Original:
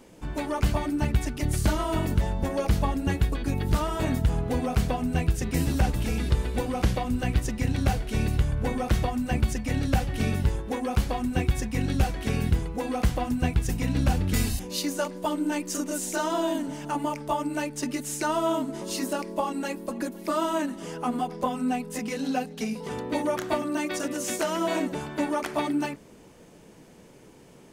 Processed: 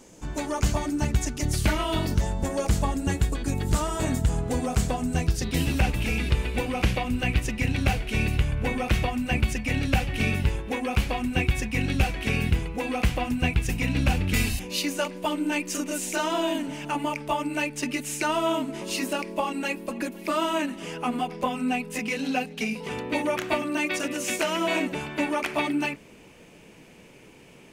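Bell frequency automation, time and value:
bell +11.5 dB 0.66 oct
1.49 s 6700 Hz
1.7 s 2000 Hz
2.28 s 7500 Hz
5.13 s 7500 Hz
5.72 s 2500 Hz

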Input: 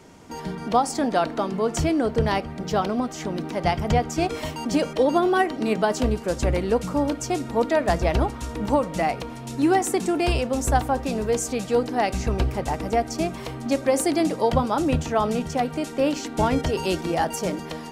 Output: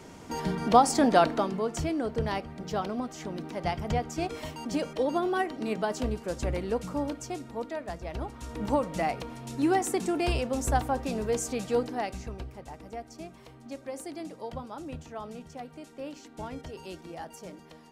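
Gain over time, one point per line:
1.23 s +1 dB
1.72 s -8 dB
7.01 s -8 dB
8.02 s -17 dB
8.62 s -5.5 dB
11.79 s -5.5 dB
12.46 s -17.5 dB

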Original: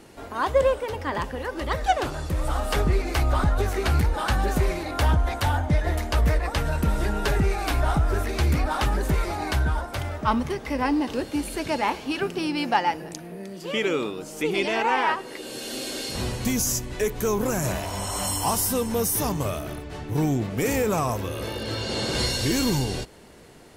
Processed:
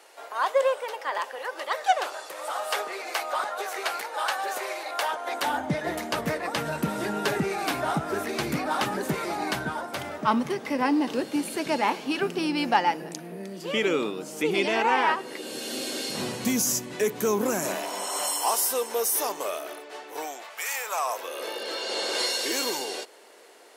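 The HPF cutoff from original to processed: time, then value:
HPF 24 dB/oct
5.12 s 530 Hz
5.69 s 160 Hz
17.19 s 160 Hz
18.39 s 410 Hz
19.98 s 410 Hz
20.69 s 950 Hz
21.44 s 400 Hz

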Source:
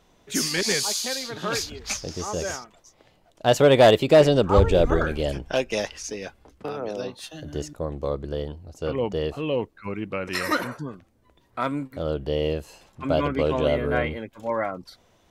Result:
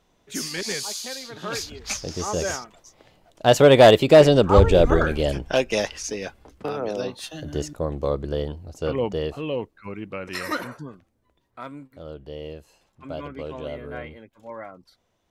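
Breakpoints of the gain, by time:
1.27 s -5 dB
2.28 s +3 dB
8.73 s +3 dB
9.74 s -3.5 dB
10.81 s -3.5 dB
11.68 s -11 dB

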